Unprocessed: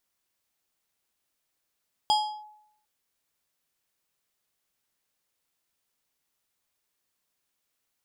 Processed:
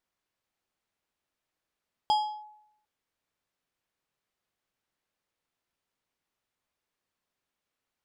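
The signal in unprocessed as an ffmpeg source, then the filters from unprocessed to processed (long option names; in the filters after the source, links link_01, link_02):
-f lavfi -i "aevalsrc='0.141*pow(10,-3*t/0.75)*sin(2*PI*848*t+0.81*clip(1-t/0.34,0,1)*sin(2*PI*4.84*848*t))':duration=0.75:sample_rate=44100"
-af "lowpass=frequency=2300:poles=1"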